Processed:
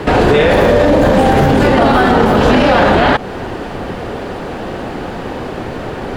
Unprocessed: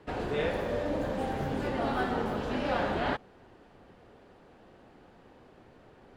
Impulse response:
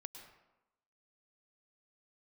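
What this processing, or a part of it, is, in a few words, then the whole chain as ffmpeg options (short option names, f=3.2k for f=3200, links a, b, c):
loud club master: -af "acompressor=threshold=-35dB:ratio=2,asoftclip=type=hard:threshold=-25.5dB,alimiter=level_in=34dB:limit=-1dB:release=50:level=0:latency=1,volume=-1dB"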